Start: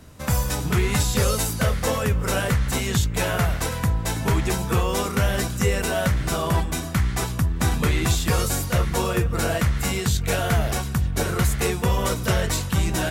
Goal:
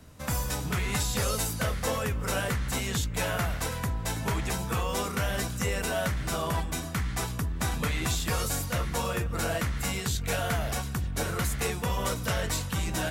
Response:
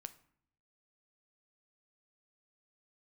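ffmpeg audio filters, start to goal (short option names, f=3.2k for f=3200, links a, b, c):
-filter_complex "[0:a]bandreject=f=370:w=12,acrossover=split=570|2500[a][b][c];[a]asoftclip=type=tanh:threshold=-21dB[d];[d][b][c]amix=inputs=3:normalize=0,volume=-5dB"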